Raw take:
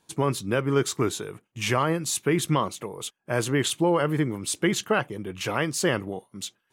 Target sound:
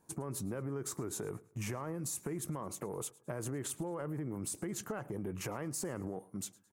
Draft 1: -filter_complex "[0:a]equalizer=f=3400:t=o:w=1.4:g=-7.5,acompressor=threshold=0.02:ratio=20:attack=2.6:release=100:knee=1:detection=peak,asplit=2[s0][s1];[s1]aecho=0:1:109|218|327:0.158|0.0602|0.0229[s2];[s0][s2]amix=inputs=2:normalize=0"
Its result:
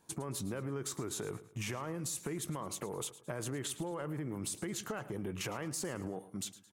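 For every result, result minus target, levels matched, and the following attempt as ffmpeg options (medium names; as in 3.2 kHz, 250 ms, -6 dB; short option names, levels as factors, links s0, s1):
4 kHz band +5.5 dB; echo-to-direct +6.5 dB
-filter_complex "[0:a]equalizer=f=3400:t=o:w=1.4:g=-19,acompressor=threshold=0.02:ratio=20:attack=2.6:release=100:knee=1:detection=peak,asplit=2[s0][s1];[s1]aecho=0:1:109|218|327:0.158|0.0602|0.0229[s2];[s0][s2]amix=inputs=2:normalize=0"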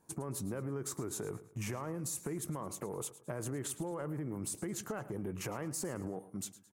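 echo-to-direct +6.5 dB
-filter_complex "[0:a]equalizer=f=3400:t=o:w=1.4:g=-19,acompressor=threshold=0.02:ratio=20:attack=2.6:release=100:knee=1:detection=peak,asplit=2[s0][s1];[s1]aecho=0:1:109|218|327:0.075|0.0285|0.0108[s2];[s0][s2]amix=inputs=2:normalize=0"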